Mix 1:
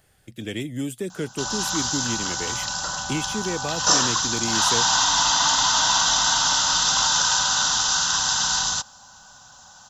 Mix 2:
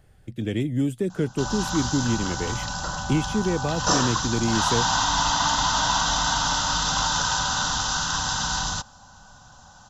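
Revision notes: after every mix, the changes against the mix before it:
master: add tilt -2.5 dB/oct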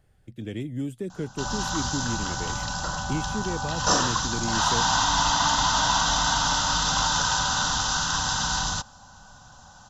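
speech -7.0 dB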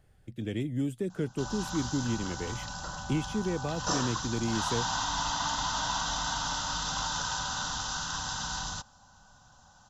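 background -9.0 dB

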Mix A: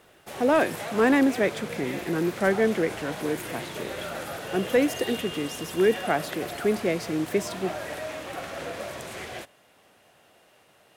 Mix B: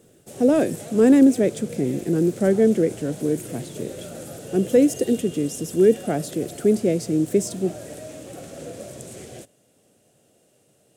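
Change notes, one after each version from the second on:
background -4.5 dB; master: add graphic EQ 125/250/500/1000/2000/4000/8000 Hz +9/+6/+6/-11/-7/-3/+11 dB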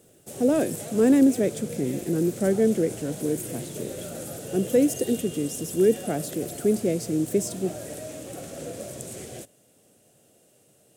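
speech -4.0 dB; master: add high shelf 11000 Hz +9 dB

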